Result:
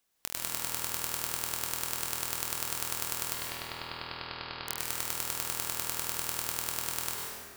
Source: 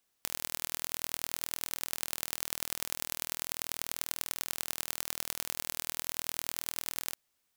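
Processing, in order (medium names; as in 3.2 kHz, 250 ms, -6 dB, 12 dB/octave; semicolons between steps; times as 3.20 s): 3.34–4.67 s: Chebyshev low-pass 4.9 kHz, order 8; plate-style reverb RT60 2.2 s, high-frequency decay 0.55×, pre-delay 90 ms, DRR -2.5 dB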